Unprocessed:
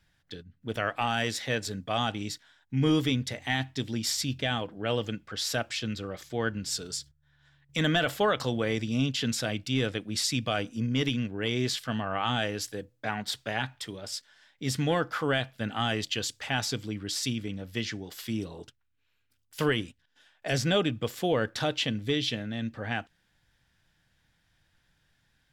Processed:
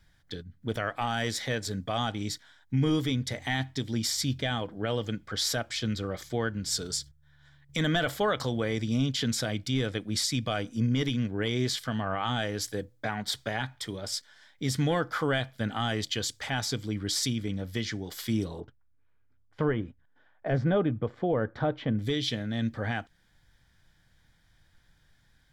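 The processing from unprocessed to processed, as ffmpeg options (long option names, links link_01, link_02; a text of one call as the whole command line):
ffmpeg -i in.wav -filter_complex "[0:a]asettb=1/sr,asplit=3[link_01][link_02][link_03];[link_01]atrim=end=18.604[link_04];[link_02]atrim=start=18.6:end=21.99,asetpts=PTS-STARTPTS,afade=type=in:duration=0.004:curve=qsin,afade=type=out:start_time=3.386:duration=0.004:curve=qsin,lowpass=1300[link_05];[link_03]atrim=start=21.986[link_06];[link_04][link_05]acrossfade=duration=0.004:curve1=hsin:curve2=qsin[link_07];[link_07][link_06]acrossfade=duration=0.004:curve1=qsin:curve2=hsin,lowshelf=frequency=69:gain=8,bandreject=frequency=2700:width=6.5,alimiter=limit=-20.5dB:level=0:latency=1:release=320,volume=3dB" out.wav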